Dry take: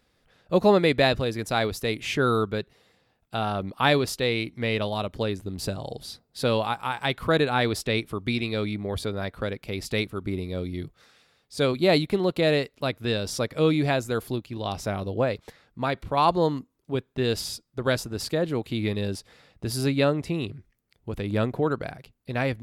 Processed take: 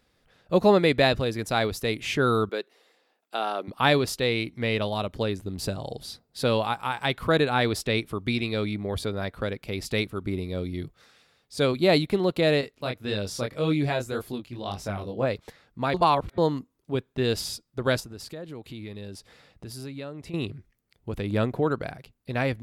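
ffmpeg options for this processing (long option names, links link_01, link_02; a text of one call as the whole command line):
ffmpeg -i in.wav -filter_complex "[0:a]asettb=1/sr,asplit=3[link_01][link_02][link_03];[link_01]atrim=end=2.494[link_04];[link_02]atrim=start=2.49:end=3.68,asetpts=PTS-STARTPTS,afade=type=in:duration=0.004:curve=qsin,afade=type=out:start_time=1.186:duration=0.004:curve=qsin,highpass=frequency=300:width=0.5412,highpass=frequency=300:width=1.3066[link_05];[link_03]atrim=start=3.676[link_06];[link_04][link_05]acrossfade=duration=0.004:curve1=hsin:curve2=qsin[link_07];[link_07][link_06]acrossfade=duration=0.004:curve1=qsin:curve2=hsin,asettb=1/sr,asplit=3[link_08][link_09][link_10];[link_08]atrim=end=12.614[link_11];[link_09]atrim=start=12.61:end=15.26,asetpts=PTS-STARTPTS,afade=type=in:duration=0.004:curve=qsin,afade=type=out:start_time=2.646:duration=0.004:curve=qsin,flanger=delay=19.5:depth=5.1:speed=1.8[link_12];[link_10]atrim=start=15.256[link_13];[link_11][link_12]acrossfade=duration=0.004:curve1=hsin:curve2=qsin[link_14];[link_14][link_13]acrossfade=duration=0.004:curve1=qsin:curve2=hsin,asettb=1/sr,asplit=3[link_15][link_16][link_17];[link_15]atrim=end=18.004[link_18];[link_16]atrim=start=18:end=20.34,asetpts=PTS-STARTPTS,afade=type=in:duration=0.004:curve=qsin,afade=type=out:start_time=2.336:duration=0.004:curve=qsin,acompressor=threshold=-41dB:ratio=2.5:attack=3.2:release=140:knee=1:detection=peak[link_19];[link_17]atrim=start=20.336[link_20];[link_18][link_19]acrossfade=duration=0.004:curve1=hsin:curve2=qsin[link_21];[link_21][link_20]acrossfade=duration=0.004:curve1=qsin:curve2=hsin,asplit=3[link_22][link_23][link_24];[link_22]atrim=end=15.942[link_25];[link_23]atrim=start=15.938:end=16.382,asetpts=PTS-STARTPTS,areverse[link_26];[link_24]atrim=start=16.378[link_27];[link_25][link_26]acrossfade=duration=0.004:curve1=hsin:curve2=hsin[link_28];[link_28][link_27]acrossfade=duration=0.004:curve1=hsin:curve2=hsin" out.wav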